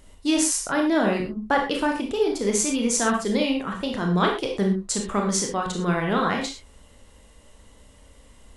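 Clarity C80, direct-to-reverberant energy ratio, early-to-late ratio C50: 10.0 dB, 1.0 dB, 5.0 dB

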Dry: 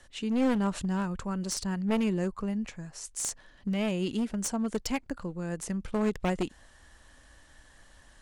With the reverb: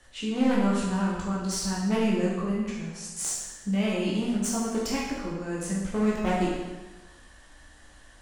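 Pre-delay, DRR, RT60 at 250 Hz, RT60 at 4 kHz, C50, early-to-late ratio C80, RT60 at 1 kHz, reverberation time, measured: 12 ms, -6.0 dB, 1.2 s, 1.1 s, 1.0 dB, 3.0 dB, 1.2 s, 1.2 s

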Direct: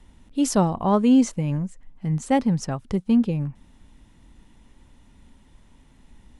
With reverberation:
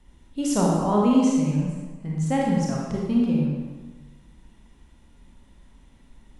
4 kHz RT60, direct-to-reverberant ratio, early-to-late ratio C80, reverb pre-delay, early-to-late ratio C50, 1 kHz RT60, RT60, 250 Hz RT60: 1.0 s, -3.5 dB, 1.5 dB, 29 ms, -1.0 dB, 1.3 s, 1.3 s, 1.3 s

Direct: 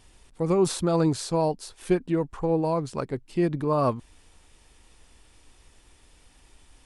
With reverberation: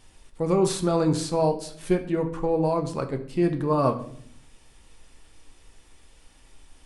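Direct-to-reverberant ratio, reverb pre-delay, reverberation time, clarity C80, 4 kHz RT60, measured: 5.0 dB, 4 ms, 0.60 s, 15.0 dB, 0.50 s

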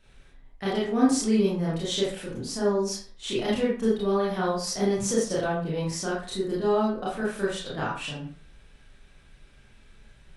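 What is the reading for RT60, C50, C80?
0.45 s, 2.5 dB, 7.5 dB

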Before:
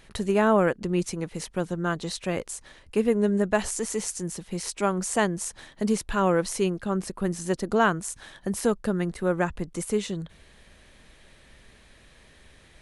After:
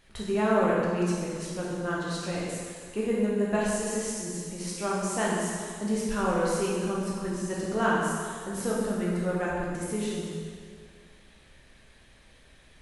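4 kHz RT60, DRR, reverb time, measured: 1.9 s, -6.0 dB, 2.0 s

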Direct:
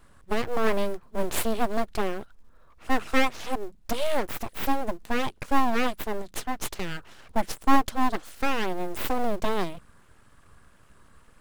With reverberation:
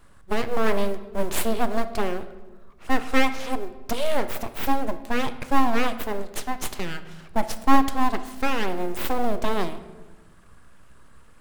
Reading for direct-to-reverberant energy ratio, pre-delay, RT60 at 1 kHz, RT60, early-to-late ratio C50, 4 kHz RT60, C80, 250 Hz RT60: 10.5 dB, 15 ms, 1.2 s, 1.3 s, 13.0 dB, 0.85 s, 15.0 dB, 1.9 s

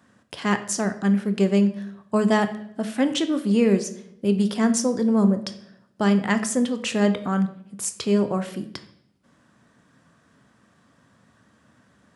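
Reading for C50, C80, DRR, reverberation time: 12.5 dB, 15.5 dB, 9.0 dB, 0.70 s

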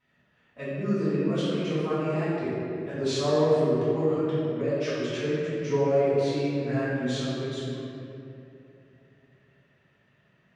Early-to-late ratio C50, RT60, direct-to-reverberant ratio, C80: -4.0 dB, 2.8 s, -12.5 dB, -2.0 dB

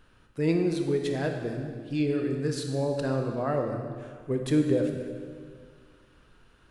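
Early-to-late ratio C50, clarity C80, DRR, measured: 5.0 dB, 6.0 dB, 3.5 dB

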